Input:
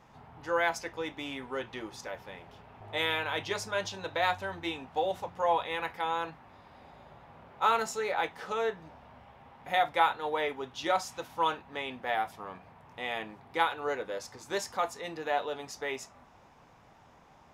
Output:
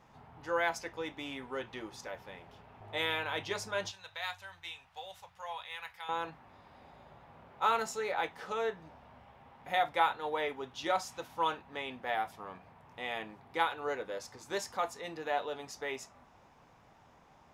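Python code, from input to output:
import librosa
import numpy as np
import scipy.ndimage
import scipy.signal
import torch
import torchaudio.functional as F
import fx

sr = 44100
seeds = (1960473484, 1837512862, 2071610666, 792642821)

y = fx.tone_stack(x, sr, knobs='10-0-10', at=(3.91, 6.09))
y = y * 10.0 ** (-3.0 / 20.0)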